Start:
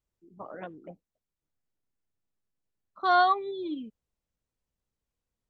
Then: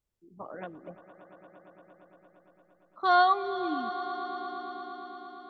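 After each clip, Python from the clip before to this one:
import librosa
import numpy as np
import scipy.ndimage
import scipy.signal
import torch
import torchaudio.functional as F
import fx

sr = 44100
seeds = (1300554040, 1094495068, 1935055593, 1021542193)

y = fx.echo_swell(x, sr, ms=115, loudest=5, wet_db=-17)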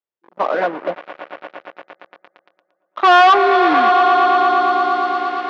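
y = fx.leveller(x, sr, passes=5)
y = scipy.signal.sosfilt(scipy.signal.butter(2, 460.0, 'highpass', fs=sr, output='sos'), y)
y = fx.air_absorb(y, sr, metres=270.0)
y = y * 10.0 ** (8.5 / 20.0)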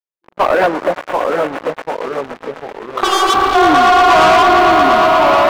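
y = fx.echo_pitch(x, sr, ms=686, semitones=-2, count=3, db_per_echo=-6.0)
y = fx.leveller(y, sr, passes=3)
y = fx.spec_repair(y, sr, seeds[0], start_s=3.07, length_s=0.45, low_hz=330.0, high_hz=2700.0, source='before')
y = y * 10.0 ** (-2.5 / 20.0)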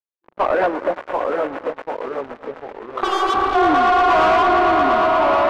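y = fx.lowpass(x, sr, hz=1900.0, slope=6)
y = fx.peak_eq(y, sr, hz=160.0, db=-11.5, octaves=0.31)
y = y + 10.0 ** (-21.0 / 20.0) * np.pad(y, (int(232 * sr / 1000.0), 0))[:len(y)]
y = y * 10.0 ** (-4.5 / 20.0)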